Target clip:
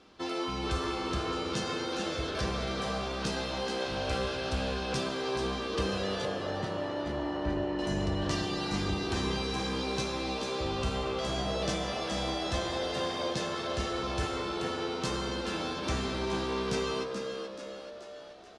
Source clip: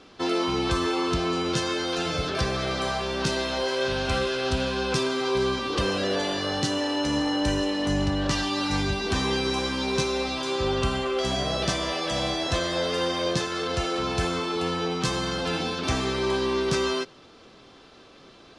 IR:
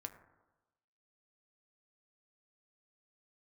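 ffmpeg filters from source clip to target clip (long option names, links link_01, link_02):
-filter_complex "[0:a]asettb=1/sr,asplit=3[link_01][link_02][link_03];[link_01]atrim=end=6.254[link_04];[link_02]atrim=start=6.25:end=7.79,asetpts=PTS-STARTPTS,afade=type=in:duration=0.004:curve=qsin,afade=type=out:start_time=1.536:duration=0.004:curve=qsin,lowpass=1800[link_05];[link_03]atrim=start=7.786[link_06];[link_04][link_05]acrossfade=duration=0.004:curve1=hsin:curve2=qsin[link_07];[link_07][link_06]acrossfade=duration=0.004:curve1=qsin:curve2=hsin,asplit=7[link_08][link_09][link_10][link_11][link_12][link_13][link_14];[link_09]adelay=431,afreqshift=68,volume=-8dB[link_15];[link_10]adelay=862,afreqshift=136,volume=-13.5dB[link_16];[link_11]adelay=1293,afreqshift=204,volume=-19dB[link_17];[link_12]adelay=1724,afreqshift=272,volume=-24.5dB[link_18];[link_13]adelay=2155,afreqshift=340,volume=-30.1dB[link_19];[link_14]adelay=2586,afreqshift=408,volume=-35.6dB[link_20];[link_08][link_15][link_16][link_17][link_18][link_19][link_20]amix=inputs=7:normalize=0[link_21];[1:a]atrim=start_sample=2205,asetrate=29988,aresample=44100[link_22];[link_21][link_22]afir=irnorm=-1:irlink=0,volume=-5dB"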